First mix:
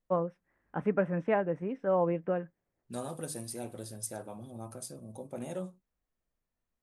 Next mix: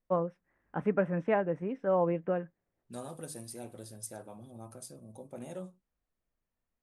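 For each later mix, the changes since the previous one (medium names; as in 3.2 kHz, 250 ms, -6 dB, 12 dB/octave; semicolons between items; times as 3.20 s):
second voice -4.0 dB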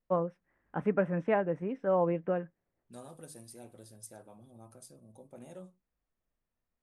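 second voice -6.0 dB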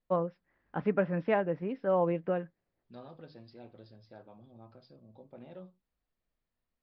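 first voice: remove low-pass 2.6 kHz 12 dB/octave; master: add steep low-pass 5 kHz 96 dB/octave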